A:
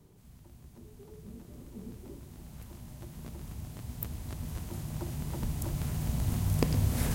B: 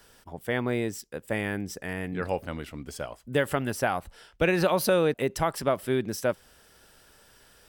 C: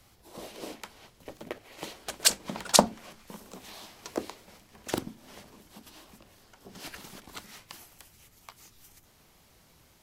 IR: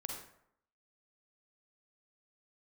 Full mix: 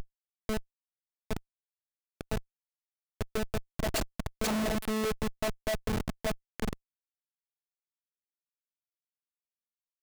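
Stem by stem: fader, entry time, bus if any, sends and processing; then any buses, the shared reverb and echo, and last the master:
-1.5 dB, 0.00 s, send -6 dB, LPF 3800 Hz 24 dB/oct; treble ducked by the level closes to 1200 Hz, closed at -28 dBFS; steep high-pass 170 Hz 36 dB/oct; auto duck -9 dB, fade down 1.50 s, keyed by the second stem
-5.0 dB, 0.00 s, no send, band shelf 7300 Hz -10.5 dB; upward compressor, threshold -36 dBFS; fixed phaser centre 330 Hz, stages 6
-4.0 dB, 1.70 s, send -9 dB, dry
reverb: on, RT60 0.70 s, pre-delay 38 ms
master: robotiser 217 Hz; sample leveller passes 3; Schmitt trigger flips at -33 dBFS

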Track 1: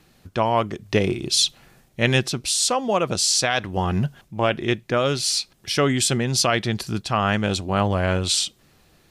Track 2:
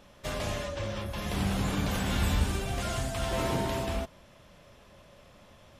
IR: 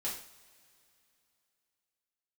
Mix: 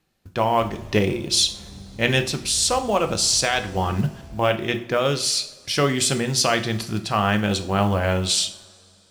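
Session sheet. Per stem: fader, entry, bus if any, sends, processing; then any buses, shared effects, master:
-2.0 dB, 0.00 s, send -7 dB, notches 60/120/180/240/300/360 Hz; gate -46 dBFS, range -14 dB
-19.5 dB, 0.35 s, no send, low shelf 440 Hz +11 dB; vocal rider 0.5 s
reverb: on, pre-delay 3 ms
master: de-hum 168.6 Hz, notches 8; short-mantissa float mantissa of 4-bit

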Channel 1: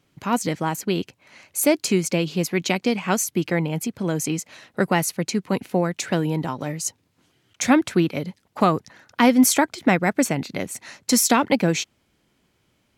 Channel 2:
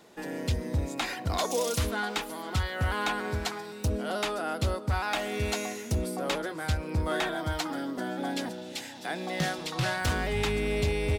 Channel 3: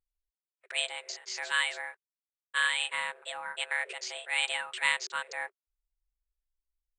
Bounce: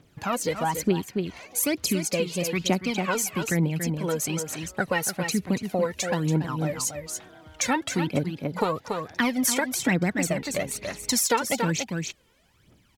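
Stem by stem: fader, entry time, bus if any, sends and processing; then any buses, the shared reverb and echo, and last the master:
0.0 dB, 0.00 s, no send, echo send -9 dB, phaser 1.1 Hz, delay 2.3 ms, feedback 74%
-13.0 dB, 0.00 s, no send, no echo send, compressor, threshold -32 dBFS, peak gain reduction 8.5 dB; running mean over 5 samples
off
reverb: off
echo: echo 0.283 s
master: compressor 2:1, threshold -27 dBFS, peak gain reduction 11 dB

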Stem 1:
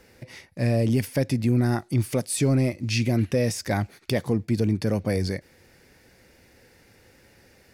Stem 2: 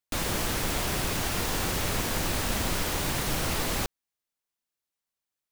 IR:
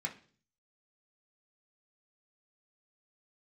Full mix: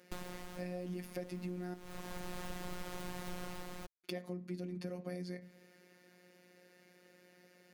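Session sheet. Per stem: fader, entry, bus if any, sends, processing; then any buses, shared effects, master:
-1.0 dB, 0.00 s, muted 1.74–4.04, send -8.5 dB, steep high-pass 150 Hz; high shelf 5400 Hz +5 dB; notch 870 Hz, Q 12
+2.0 dB, 0.00 s, no send, auto duck -18 dB, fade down 0.65 s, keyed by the first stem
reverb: on, RT60 0.45 s, pre-delay 3 ms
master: high shelf 2300 Hz -9 dB; robotiser 179 Hz; compressor 4:1, threshold -40 dBFS, peak gain reduction 13.5 dB

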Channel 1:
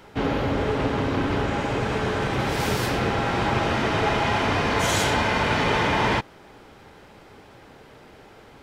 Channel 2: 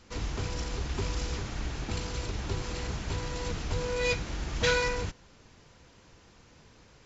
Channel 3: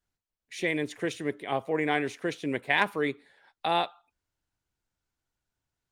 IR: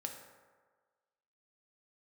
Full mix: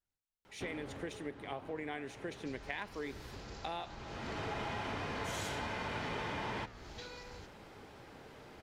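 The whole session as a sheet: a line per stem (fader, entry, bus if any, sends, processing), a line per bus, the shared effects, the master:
-1.5 dB, 0.45 s, no send, auto duck -21 dB, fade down 1.25 s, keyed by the third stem
-10.5 dB, 2.35 s, no send, bell 4300 Hz +8 dB 0.71 oct; compressor 4:1, threshold -33 dBFS, peak gain reduction 11.5 dB
-4.0 dB, 0.00 s, no send, dry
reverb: off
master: flange 1.7 Hz, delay 8.5 ms, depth 6.3 ms, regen -88%; compressor 6:1, threshold -37 dBFS, peak gain reduction 12.5 dB

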